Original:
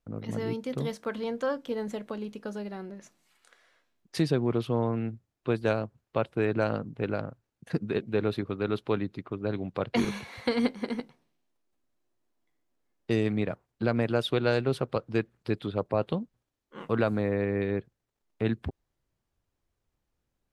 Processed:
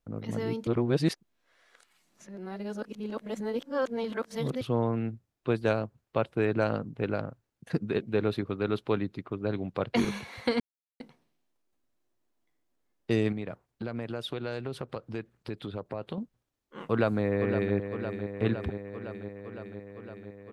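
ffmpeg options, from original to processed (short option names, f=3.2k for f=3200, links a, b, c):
-filter_complex "[0:a]asettb=1/sr,asplit=3[a][b][c];[a]atrim=end=13.324[d];[b]atrim=start=13.32:end=16.18,asetpts=PTS-STARTPTS,afade=t=in:d=0.004:c=qsin,afade=t=out:st=2.856:d=0.004:c=qsin,acompressor=threshold=-33dB:ratio=3:attack=3.2:release=140:knee=1:detection=peak[e];[c]atrim=start=16.176[f];[d][e]acrossfade=d=0.004:c1=hsin:c2=qsin[g];[g][f]acrossfade=d=0.004:c1=qsin:c2=hsin,asplit=2[h][i];[i]afade=t=in:st=16.83:d=0.01,afade=t=out:st=17.75:d=0.01,aecho=0:1:510|1020|1530|2040|2550|3060|3570|4080|4590|5100|5610|6120:0.375837|0.281878|0.211409|0.158556|0.118917|0.089188|0.066891|0.0501682|0.0376262|0.0282196|0.0211647|0.0158735[j];[h][j]amix=inputs=2:normalize=0,asplit=5[k][l][m][n][o];[k]atrim=end=0.672[p];[l]atrim=start=0.668:end=4.612,asetpts=PTS-STARTPTS,areverse[q];[m]atrim=start=4.608:end=10.6,asetpts=PTS-STARTPTS,afade=t=out:st=5.988:d=0.004:c=hsin[r];[n]atrim=start=10.6:end=11,asetpts=PTS-STARTPTS,volume=0[s];[o]atrim=start=11,asetpts=PTS-STARTPTS,afade=t=in:d=0.004:c=hsin[t];[p][q]acrossfade=d=0.004:c1=hsin:c2=hsin[u];[r][s][t]concat=n=3:v=0:a=1[v];[u][v]acrossfade=d=0.004:c1=hsin:c2=hsin"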